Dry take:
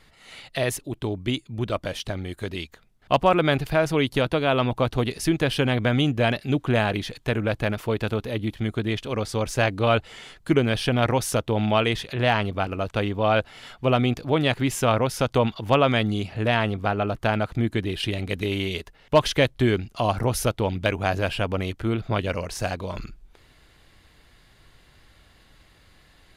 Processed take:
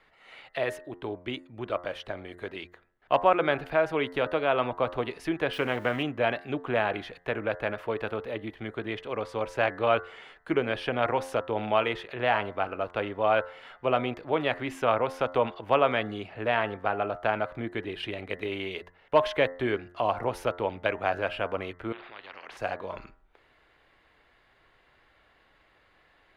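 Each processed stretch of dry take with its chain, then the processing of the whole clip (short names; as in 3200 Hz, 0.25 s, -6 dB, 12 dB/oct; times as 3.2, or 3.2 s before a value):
5.53–6.03 switching spikes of -26 dBFS + Doppler distortion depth 0.15 ms
21.92–22.57 compressor, threshold -28 dBFS + air absorption 380 m + spectral compressor 10:1
whole clip: three-band isolator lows -14 dB, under 350 Hz, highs -19 dB, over 2800 Hz; de-hum 88.51 Hz, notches 23; gain -1.5 dB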